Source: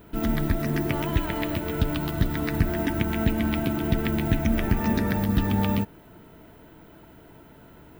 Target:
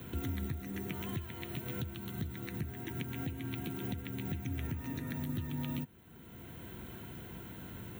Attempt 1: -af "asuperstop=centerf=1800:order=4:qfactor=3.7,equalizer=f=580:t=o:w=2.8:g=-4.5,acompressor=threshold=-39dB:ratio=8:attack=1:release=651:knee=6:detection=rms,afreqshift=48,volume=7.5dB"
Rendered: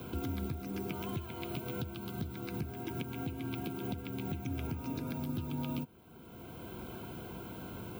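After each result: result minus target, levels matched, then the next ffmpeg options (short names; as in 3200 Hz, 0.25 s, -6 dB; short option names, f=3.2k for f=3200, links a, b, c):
500 Hz band +4.0 dB; 2000 Hz band -2.0 dB
-af "asuperstop=centerf=1800:order=4:qfactor=3.7,equalizer=f=580:t=o:w=2.8:g=-12,acompressor=threshold=-39dB:ratio=8:attack=1:release=651:knee=6:detection=rms,afreqshift=48,volume=7.5dB"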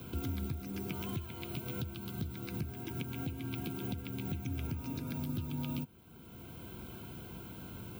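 2000 Hz band -2.5 dB
-af "asuperstop=centerf=4900:order=4:qfactor=3.7,equalizer=f=580:t=o:w=2.8:g=-12,acompressor=threshold=-39dB:ratio=8:attack=1:release=651:knee=6:detection=rms,afreqshift=48,volume=7.5dB"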